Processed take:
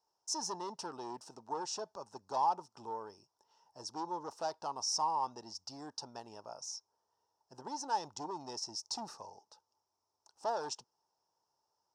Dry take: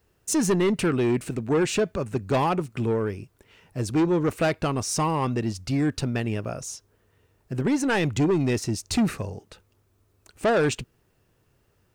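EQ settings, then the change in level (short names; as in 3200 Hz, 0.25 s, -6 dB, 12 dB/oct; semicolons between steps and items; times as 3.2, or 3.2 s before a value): double band-pass 2200 Hz, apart 2.6 oct; bell 2300 Hz +4.5 dB 0.7 oct; 0.0 dB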